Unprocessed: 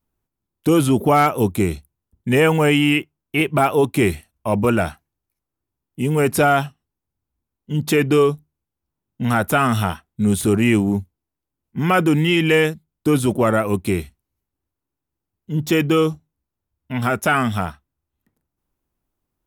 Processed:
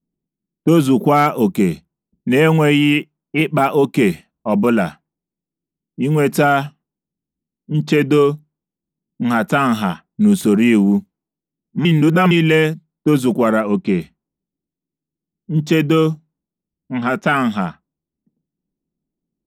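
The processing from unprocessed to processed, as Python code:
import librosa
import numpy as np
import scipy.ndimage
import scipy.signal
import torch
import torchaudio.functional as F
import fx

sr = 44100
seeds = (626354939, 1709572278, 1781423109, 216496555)

y = fx.air_absorb(x, sr, metres=100.0, at=(13.6, 14.0), fade=0.02)
y = fx.edit(y, sr, fx.reverse_span(start_s=11.85, length_s=0.46), tone=tone)
y = fx.low_shelf_res(y, sr, hz=130.0, db=-9.0, q=3.0)
y = fx.env_lowpass(y, sr, base_hz=370.0, full_db=-14.5)
y = fx.peak_eq(y, sr, hz=10000.0, db=-9.0, octaves=0.34)
y = y * librosa.db_to_amplitude(1.0)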